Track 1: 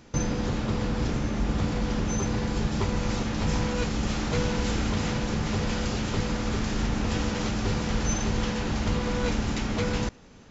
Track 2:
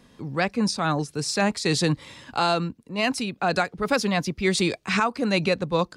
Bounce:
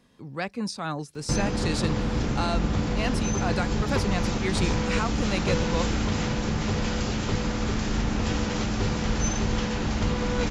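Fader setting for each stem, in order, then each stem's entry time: +1.0 dB, -7.0 dB; 1.15 s, 0.00 s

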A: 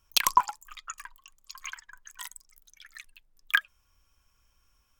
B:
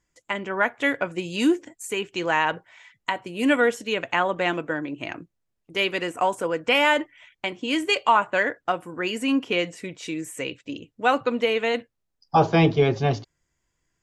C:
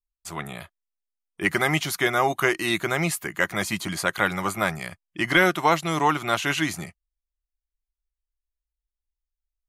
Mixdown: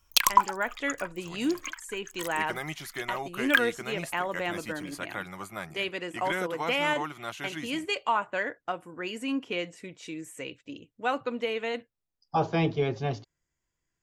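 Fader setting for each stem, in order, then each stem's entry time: +1.5 dB, -8.0 dB, -13.5 dB; 0.00 s, 0.00 s, 0.95 s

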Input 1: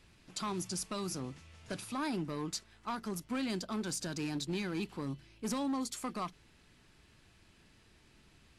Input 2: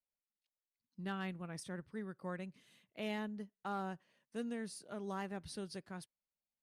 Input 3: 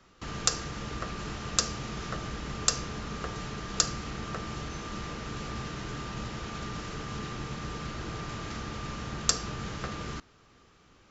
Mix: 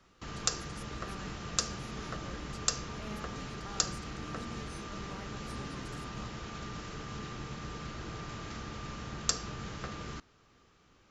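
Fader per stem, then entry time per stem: -16.0 dB, -7.5 dB, -4.5 dB; 0.00 s, 0.00 s, 0.00 s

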